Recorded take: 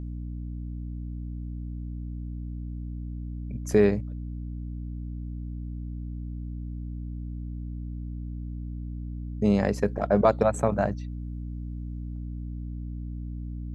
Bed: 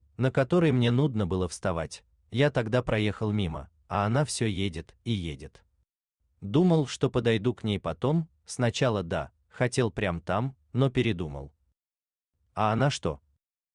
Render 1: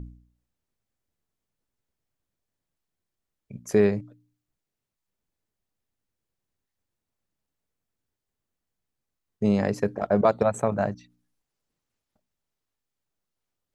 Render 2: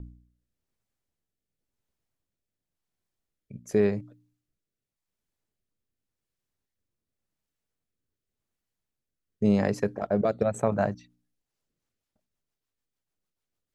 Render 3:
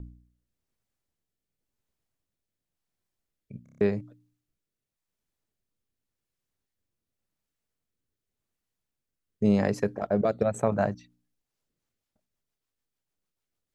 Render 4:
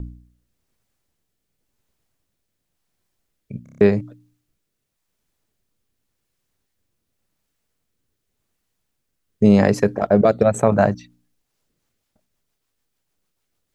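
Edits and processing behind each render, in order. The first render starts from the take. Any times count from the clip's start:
de-hum 60 Hz, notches 5
rotary speaker horn 0.9 Hz, later 6.7 Hz, at 11.25
3.63 stutter in place 0.03 s, 6 plays
gain +10.5 dB; limiter -2 dBFS, peak gain reduction 2 dB

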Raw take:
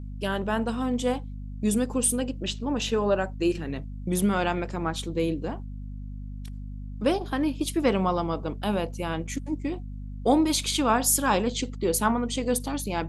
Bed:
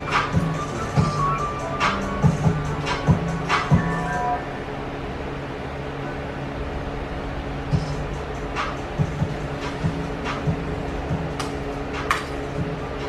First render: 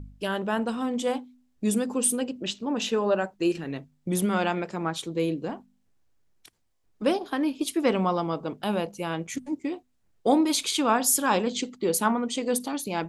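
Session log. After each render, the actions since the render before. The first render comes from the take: de-hum 50 Hz, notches 5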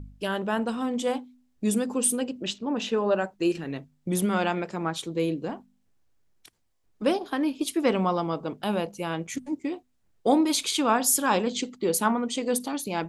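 2.58–3.11 LPF 3600 Hz 6 dB/oct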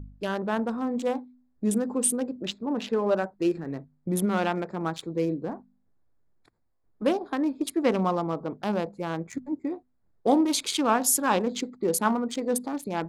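Wiener smoothing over 15 samples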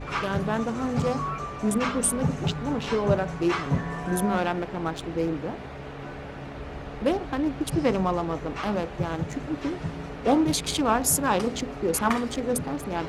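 add bed -8.5 dB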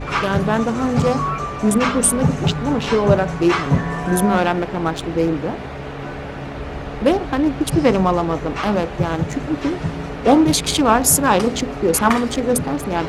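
gain +8.5 dB; limiter -1 dBFS, peak gain reduction 1 dB

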